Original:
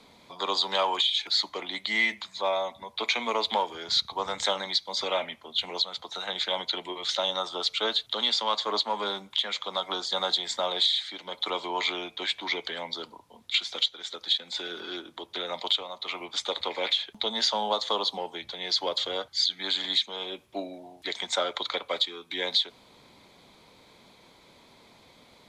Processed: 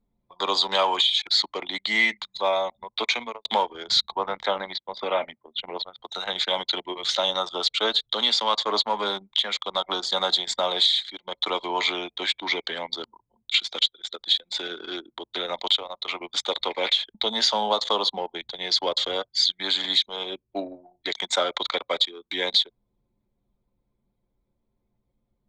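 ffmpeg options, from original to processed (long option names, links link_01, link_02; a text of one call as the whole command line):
ffmpeg -i in.wav -filter_complex "[0:a]asettb=1/sr,asplit=3[link_01][link_02][link_03];[link_01]atrim=end=4.154[link_04];[link_02]atrim=start=4.15:end=6,asetpts=PTS-STARTPTS,afade=type=in:duration=0.004:curve=qsin,afade=type=out:start_time=1.846:duration=0.004:curve=qsin,highpass=120,lowpass=2400[link_05];[link_03]atrim=start=5.996[link_06];[link_04][link_05]acrossfade=duration=0.004:curve1=hsin:curve2=qsin[link_07];[link_07][link_06]acrossfade=duration=0.004:curve1=qsin:curve2=hsin,asplit=2[link_08][link_09];[link_08]atrim=end=3.45,asetpts=PTS-STARTPTS,afade=type=out:start_time=3.04:duration=0.41[link_10];[link_09]atrim=start=3.45,asetpts=PTS-STARTPTS,afade=type=in:duration=0.004:curve=hsin[link_11];[link_10][link_11]concat=n=2:v=0:a=1,anlmdn=1.58,volume=4dB" out.wav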